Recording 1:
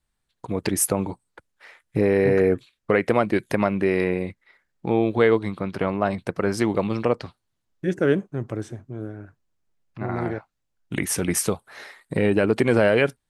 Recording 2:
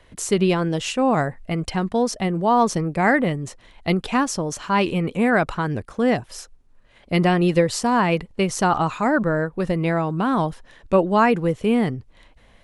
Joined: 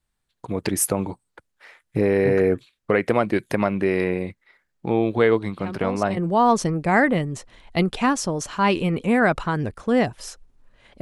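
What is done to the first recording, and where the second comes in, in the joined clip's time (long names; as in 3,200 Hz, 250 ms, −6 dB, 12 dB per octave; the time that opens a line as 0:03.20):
recording 1
0:05.59: mix in recording 2 from 0:01.70 0.58 s −10.5 dB
0:06.17: continue with recording 2 from 0:02.28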